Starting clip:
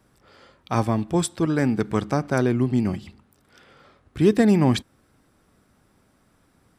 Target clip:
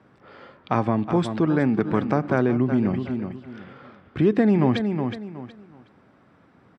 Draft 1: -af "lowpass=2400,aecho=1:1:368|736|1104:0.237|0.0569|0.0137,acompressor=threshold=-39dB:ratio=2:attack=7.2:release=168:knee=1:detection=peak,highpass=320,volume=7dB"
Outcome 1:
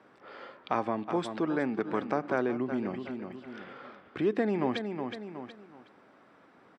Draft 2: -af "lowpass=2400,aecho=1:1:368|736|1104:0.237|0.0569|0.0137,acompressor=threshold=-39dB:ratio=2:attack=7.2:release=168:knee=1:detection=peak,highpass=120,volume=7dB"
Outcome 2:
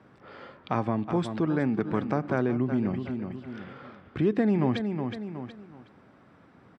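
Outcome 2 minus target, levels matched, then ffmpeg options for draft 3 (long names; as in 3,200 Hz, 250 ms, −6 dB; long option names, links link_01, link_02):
downward compressor: peak gain reduction +5.5 dB
-af "lowpass=2400,aecho=1:1:368|736|1104:0.237|0.0569|0.0137,acompressor=threshold=-28dB:ratio=2:attack=7.2:release=168:knee=1:detection=peak,highpass=120,volume=7dB"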